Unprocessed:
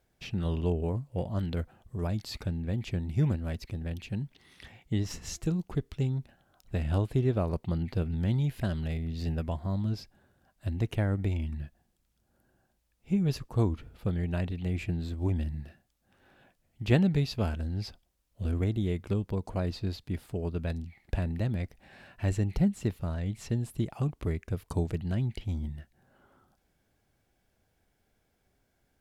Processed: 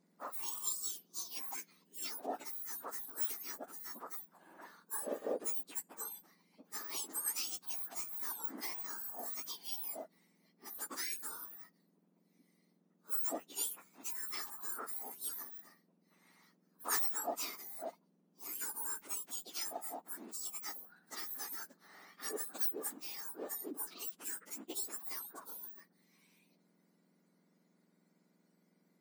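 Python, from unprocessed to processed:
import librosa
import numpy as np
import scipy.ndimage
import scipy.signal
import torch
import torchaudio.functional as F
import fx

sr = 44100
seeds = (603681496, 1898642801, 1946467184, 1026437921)

y = fx.octave_mirror(x, sr, pivot_hz=1800.0)
y = np.clip(10.0 ** (25.0 / 20.0) * y, -1.0, 1.0) / 10.0 ** (25.0 / 20.0)
y = F.gain(torch.from_numpy(y), -1.0).numpy()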